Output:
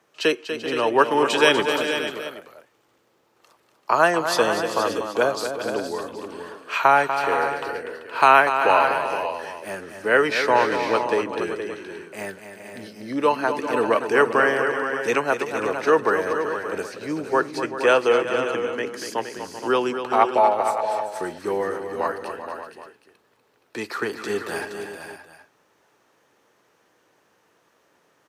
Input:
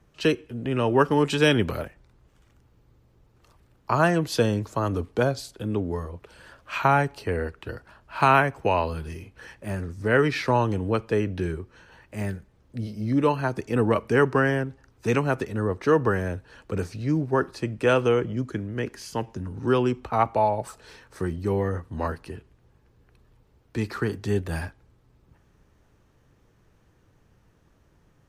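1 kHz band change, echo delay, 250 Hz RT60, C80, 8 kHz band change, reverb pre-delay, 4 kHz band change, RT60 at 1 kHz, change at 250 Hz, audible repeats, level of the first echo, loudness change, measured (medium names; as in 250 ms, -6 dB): +6.0 dB, 243 ms, no reverb, no reverb, +6.5 dB, no reverb, +6.5 dB, no reverb, -2.5 dB, 5, -9.0 dB, +3.5 dB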